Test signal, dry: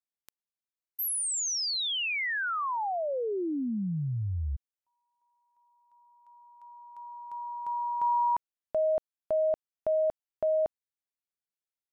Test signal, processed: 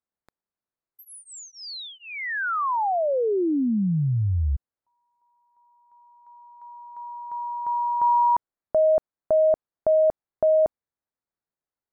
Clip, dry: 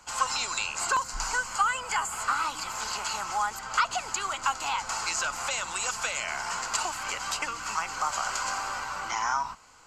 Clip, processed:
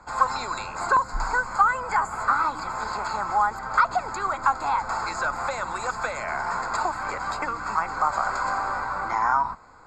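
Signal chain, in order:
moving average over 15 samples
level +8.5 dB

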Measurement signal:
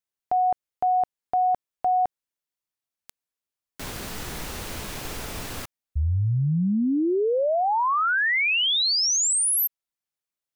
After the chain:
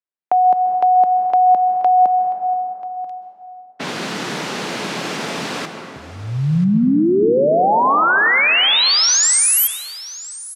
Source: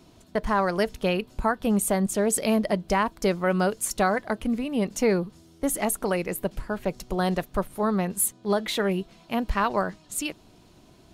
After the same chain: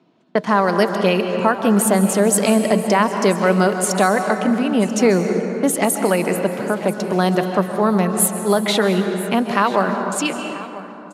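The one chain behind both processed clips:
noise gate −43 dBFS, range −15 dB
Butterworth high-pass 150 Hz 36 dB per octave
dense smooth reverb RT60 2.6 s, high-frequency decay 0.5×, pre-delay 120 ms, DRR 7.5 dB
in parallel at +3 dB: downward compressor 6 to 1, threshold −31 dBFS
on the sum: low-pass that shuts in the quiet parts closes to 2,700 Hz, open at −16 dBFS
on a send: single-tap delay 987 ms −17.5 dB
on the sum: level +4.5 dB

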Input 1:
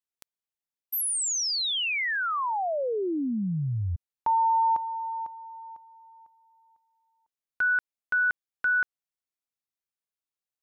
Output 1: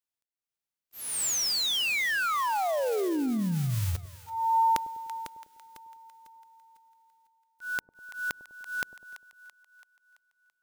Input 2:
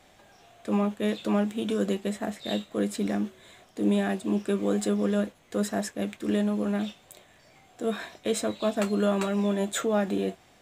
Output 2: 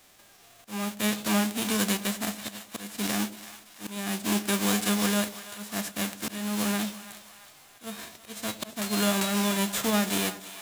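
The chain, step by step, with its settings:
spectral envelope flattened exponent 0.3
volume swells 333 ms
echo with a time of its own for lows and highs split 710 Hz, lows 100 ms, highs 334 ms, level −14 dB

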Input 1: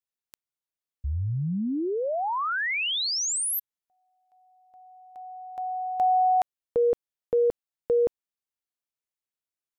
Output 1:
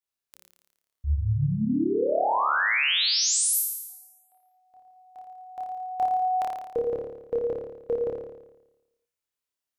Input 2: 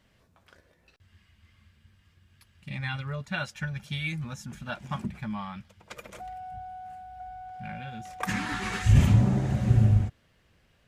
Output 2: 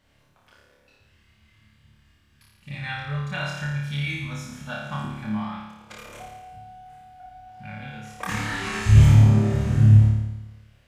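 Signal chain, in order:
mains-hum notches 60/120/180/240/300/360/420/480/540 Hz
on a send: flutter between parallel walls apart 4.8 metres, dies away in 1 s
on the sum: level −1 dB

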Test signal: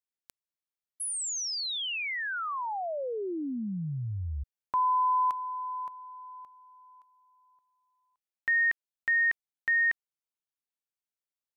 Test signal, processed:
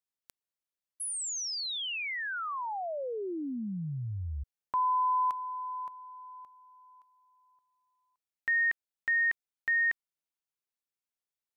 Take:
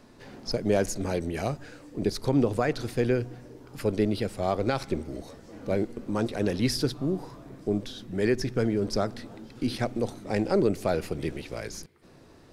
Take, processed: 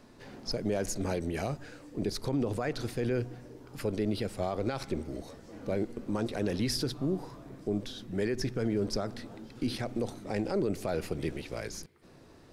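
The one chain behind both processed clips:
brickwall limiter −19.5 dBFS
level −2 dB

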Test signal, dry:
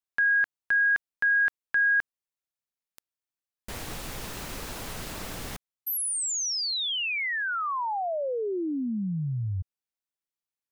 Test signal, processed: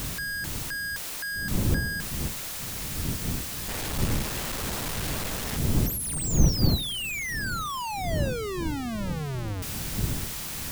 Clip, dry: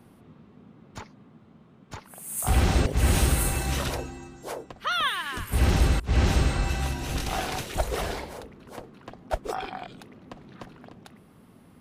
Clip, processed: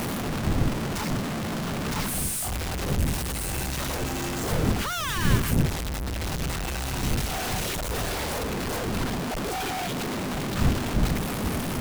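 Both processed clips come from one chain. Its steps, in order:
sign of each sample alone
wind on the microphone 150 Hz −28 dBFS
level −2 dB

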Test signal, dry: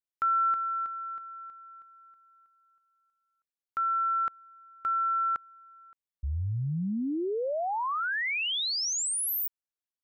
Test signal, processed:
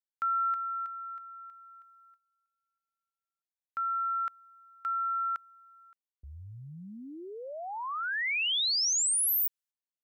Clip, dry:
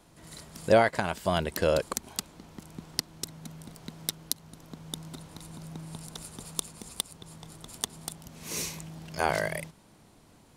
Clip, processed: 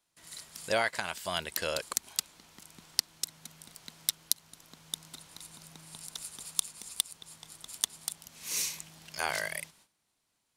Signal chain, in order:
tilt shelving filter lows −9 dB
noise gate −54 dBFS, range −16 dB
level −6 dB

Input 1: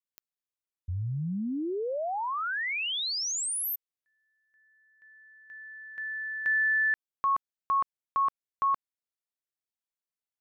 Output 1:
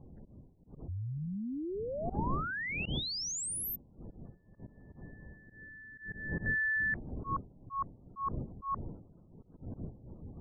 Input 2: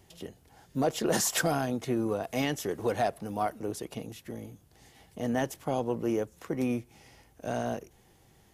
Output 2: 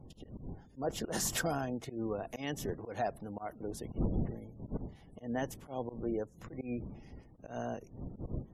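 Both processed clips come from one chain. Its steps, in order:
wind on the microphone 200 Hz −35 dBFS
volume swells 125 ms
gate on every frequency bin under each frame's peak −30 dB strong
level −6 dB

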